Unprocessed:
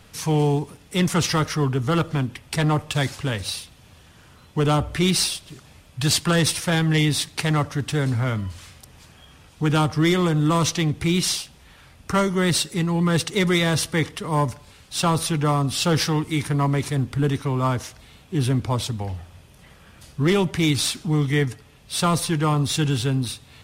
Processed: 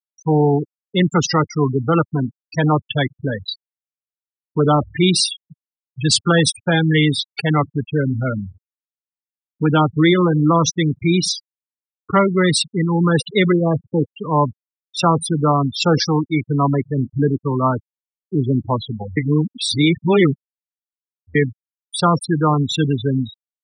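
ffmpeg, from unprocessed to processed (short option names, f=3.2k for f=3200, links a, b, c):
-filter_complex "[0:a]asettb=1/sr,asplit=3[a][b][c];[a]atrim=end=13.524[d];[b]atrim=start=13.52:end=14.15,asetpts=PTS-STARTPTS,afade=t=in:d=0.004:c=qsin,afade=t=out:st=0.626:d=0.004:c=qsin,lowpass=f=1.3k:w=0.5412,lowpass=f=1.3k:w=1.3066[e];[c]atrim=start=14.146[f];[d][e]acrossfade=d=0.004:c1=hsin:c2=qsin[g];[g][f]acrossfade=d=0.004:c1=qsin:c2=hsin,asplit=3[h][i][j];[h]atrim=end=19.172[k];[i]atrim=start=19.168:end=21.352,asetpts=PTS-STARTPTS,areverse[l];[j]atrim=start=21.348[m];[k][l]acrossfade=d=0.004:c1=hsin:c2=hsin[n];[n][m]acrossfade=d=0.004:c1=hsin:c2=hsin,afftfilt=real='re*gte(hypot(re,im),0.126)':imag='im*gte(hypot(re,im),0.126)':win_size=1024:overlap=0.75,highpass=160,volume=6.5dB"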